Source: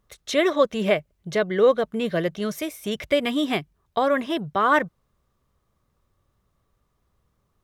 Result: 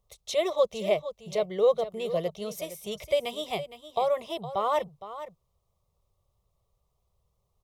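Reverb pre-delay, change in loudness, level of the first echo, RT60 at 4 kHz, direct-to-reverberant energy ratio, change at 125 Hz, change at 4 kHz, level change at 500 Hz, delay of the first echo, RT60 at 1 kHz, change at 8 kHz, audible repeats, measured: no reverb audible, −5.5 dB, −13.0 dB, no reverb audible, no reverb audible, −8.5 dB, −5.5 dB, −4.0 dB, 463 ms, no reverb audible, −3.5 dB, 1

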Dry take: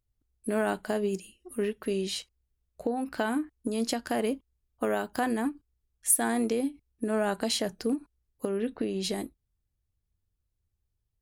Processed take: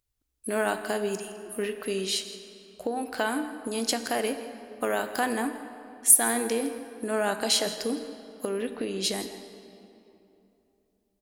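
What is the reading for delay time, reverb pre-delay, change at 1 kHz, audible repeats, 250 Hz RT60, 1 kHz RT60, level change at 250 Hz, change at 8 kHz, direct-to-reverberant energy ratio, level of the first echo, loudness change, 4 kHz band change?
164 ms, 20 ms, +3.0 dB, 1, 3.4 s, 2.8 s, −2.0 dB, +7.0 dB, 8.5 dB, −16.5 dB, +3.0 dB, +6.0 dB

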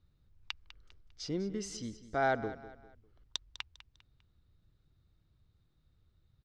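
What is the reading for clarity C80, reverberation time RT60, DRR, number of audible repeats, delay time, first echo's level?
no reverb audible, no reverb audible, no reverb audible, 3, 200 ms, −15.0 dB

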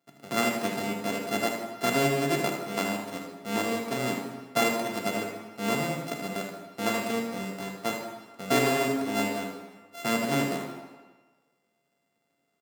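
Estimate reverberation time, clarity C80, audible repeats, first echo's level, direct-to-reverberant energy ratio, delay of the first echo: 1.4 s, 5.5 dB, 1, −7.5 dB, 0.5 dB, 78 ms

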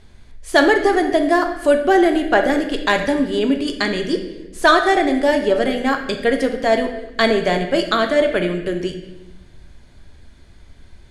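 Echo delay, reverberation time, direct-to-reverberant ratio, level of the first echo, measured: no echo audible, 0.95 s, 4.5 dB, no echo audible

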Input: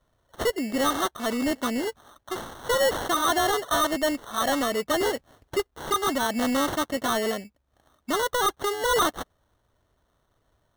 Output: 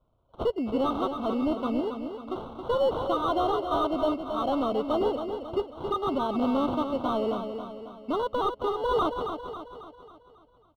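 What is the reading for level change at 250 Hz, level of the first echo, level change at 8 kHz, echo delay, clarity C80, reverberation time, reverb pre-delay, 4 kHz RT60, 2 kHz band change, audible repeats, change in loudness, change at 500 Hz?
0.0 dB, −7.5 dB, below −25 dB, 272 ms, no reverb audible, no reverb audible, no reverb audible, no reverb audible, −15.5 dB, 5, −2.5 dB, −0.5 dB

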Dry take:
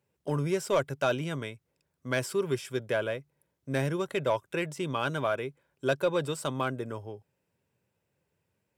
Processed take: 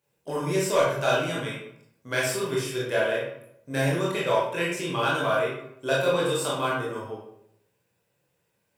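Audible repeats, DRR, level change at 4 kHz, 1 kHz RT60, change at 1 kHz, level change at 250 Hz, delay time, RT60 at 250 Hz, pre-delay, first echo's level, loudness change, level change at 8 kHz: no echo audible, −6.0 dB, +8.0 dB, 0.70 s, +6.0 dB, +2.5 dB, no echo audible, 0.80 s, 18 ms, no echo audible, +5.0 dB, +8.0 dB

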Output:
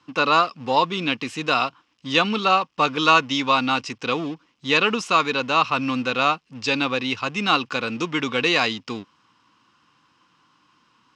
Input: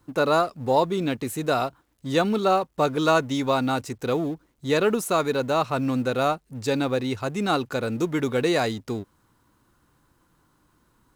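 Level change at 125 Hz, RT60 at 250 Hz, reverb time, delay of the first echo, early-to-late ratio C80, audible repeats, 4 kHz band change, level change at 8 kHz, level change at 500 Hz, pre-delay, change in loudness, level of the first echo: −4.0 dB, no reverb audible, no reverb audible, no echo audible, no reverb audible, no echo audible, +9.5 dB, −1.0 dB, −3.0 dB, no reverb audible, +3.5 dB, no echo audible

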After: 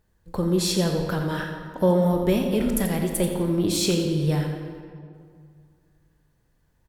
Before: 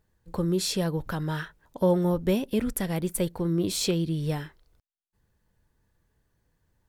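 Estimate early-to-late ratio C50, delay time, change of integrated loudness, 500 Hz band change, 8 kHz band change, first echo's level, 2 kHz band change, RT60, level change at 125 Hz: 4.0 dB, 86 ms, +4.0 dB, +4.5 dB, +3.5 dB, −10.0 dB, +4.5 dB, 2.2 s, +4.0 dB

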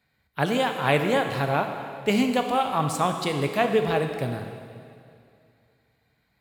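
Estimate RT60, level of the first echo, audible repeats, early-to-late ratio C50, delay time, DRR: 2.4 s, no echo audible, no echo audible, 6.5 dB, no echo audible, 5.0 dB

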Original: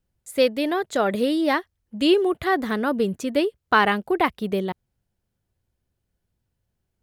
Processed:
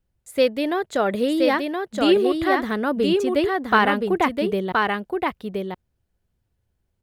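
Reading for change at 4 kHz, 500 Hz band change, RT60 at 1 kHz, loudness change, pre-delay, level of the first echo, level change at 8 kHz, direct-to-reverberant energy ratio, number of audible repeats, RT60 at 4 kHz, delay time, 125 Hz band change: +0.5 dB, +2.0 dB, no reverb audible, +1.0 dB, no reverb audible, −3.5 dB, can't be measured, no reverb audible, 1, no reverb audible, 1,022 ms, +1.5 dB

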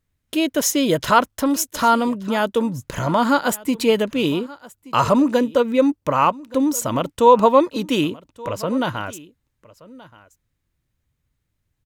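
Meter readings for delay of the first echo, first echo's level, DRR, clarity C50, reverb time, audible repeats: 1,176 ms, −21.0 dB, no reverb audible, no reverb audible, no reverb audible, 1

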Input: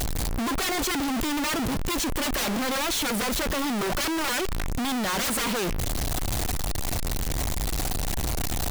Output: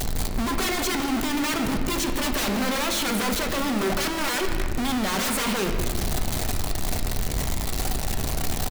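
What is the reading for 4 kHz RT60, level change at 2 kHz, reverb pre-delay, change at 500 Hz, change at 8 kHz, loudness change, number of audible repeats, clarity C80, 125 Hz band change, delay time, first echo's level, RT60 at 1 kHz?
1.2 s, +1.5 dB, 5 ms, +2.0 dB, +0.5 dB, +1.0 dB, 1, 7.5 dB, +1.0 dB, 160 ms, −16.5 dB, 1.7 s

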